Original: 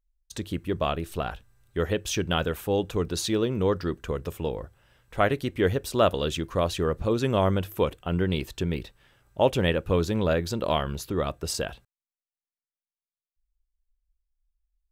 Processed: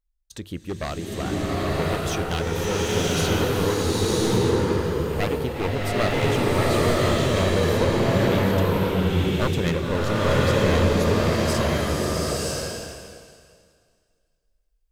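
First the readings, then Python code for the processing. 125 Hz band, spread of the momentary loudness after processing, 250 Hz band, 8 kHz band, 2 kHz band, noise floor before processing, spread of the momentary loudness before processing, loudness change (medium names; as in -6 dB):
+7.0 dB, 9 LU, +5.5 dB, +6.5 dB, +7.0 dB, under -85 dBFS, 11 LU, +4.5 dB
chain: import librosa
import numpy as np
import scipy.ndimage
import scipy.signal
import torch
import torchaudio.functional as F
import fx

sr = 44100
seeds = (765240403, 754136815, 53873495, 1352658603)

y = np.minimum(x, 2.0 * 10.0 ** (-22.5 / 20.0) - x)
y = fx.rev_bloom(y, sr, seeds[0], attack_ms=1020, drr_db=-7.5)
y = y * 10.0 ** (-2.0 / 20.0)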